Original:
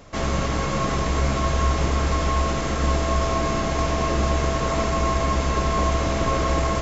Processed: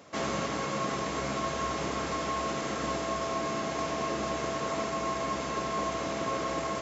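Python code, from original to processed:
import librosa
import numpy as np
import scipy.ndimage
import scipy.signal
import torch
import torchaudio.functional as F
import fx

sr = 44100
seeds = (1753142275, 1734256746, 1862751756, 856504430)

y = scipy.signal.sosfilt(scipy.signal.butter(2, 190.0, 'highpass', fs=sr, output='sos'), x)
y = fx.rider(y, sr, range_db=10, speed_s=0.5)
y = F.gain(torch.from_numpy(y), -7.0).numpy()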